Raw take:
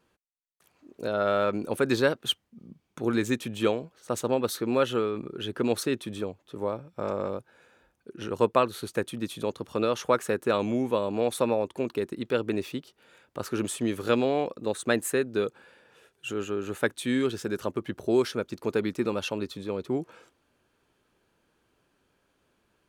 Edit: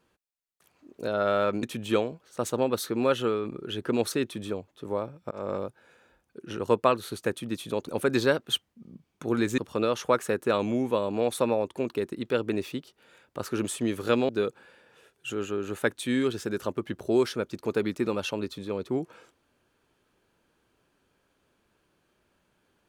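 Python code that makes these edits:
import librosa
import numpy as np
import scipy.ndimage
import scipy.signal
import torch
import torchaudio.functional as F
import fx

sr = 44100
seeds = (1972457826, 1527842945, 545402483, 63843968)

y = fx.edit(x, sr, fx.move(start_s=1.63, length_s=1.71, to_s=9.58),
    fx.fade_in_span(start_s=7.02, length_s=0.25, curve='qsin'),
    fx.cut(start_s=14.29, length_s=0.99), tone=tone)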